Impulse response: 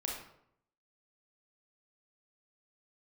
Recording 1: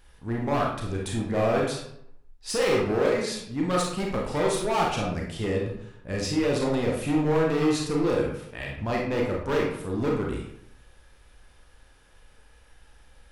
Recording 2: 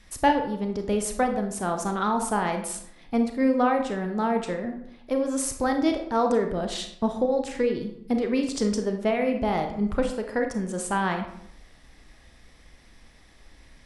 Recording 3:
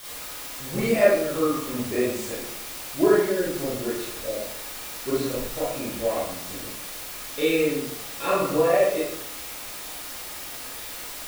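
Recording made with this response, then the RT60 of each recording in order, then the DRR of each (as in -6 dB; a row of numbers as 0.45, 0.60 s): 1; 0.70, 0.70, 0.70 s; -2.0, 4.5, -9.5 dB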